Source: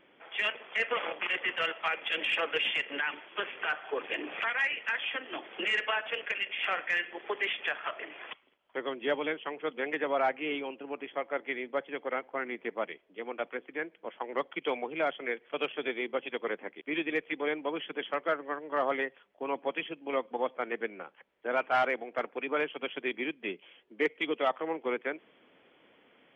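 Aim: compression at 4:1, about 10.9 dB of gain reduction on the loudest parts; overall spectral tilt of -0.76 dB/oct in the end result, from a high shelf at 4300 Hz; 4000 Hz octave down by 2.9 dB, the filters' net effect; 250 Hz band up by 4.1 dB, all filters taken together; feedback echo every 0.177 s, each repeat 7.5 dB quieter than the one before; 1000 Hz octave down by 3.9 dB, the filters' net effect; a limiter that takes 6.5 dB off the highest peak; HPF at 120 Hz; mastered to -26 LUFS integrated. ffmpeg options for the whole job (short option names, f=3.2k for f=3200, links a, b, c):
-af "highpass=120,equalizer=f=250:t=o:g=6,equalizer=f=1k:t=o:g=-6,equalizer=f=4k:t=o:g=-6,highshelf=f=4.3k:g=3.5,acompressor=threshold=-36dB:ratio=4,alimiter=level_in=6.5dB:limit=-24dB:level=0:latency=1,volume=-6.5dB,aecho=1:1:177|354|531|708|885:0.422|0.177|0.0744|0.0312|0.0131,volume=14.5dB"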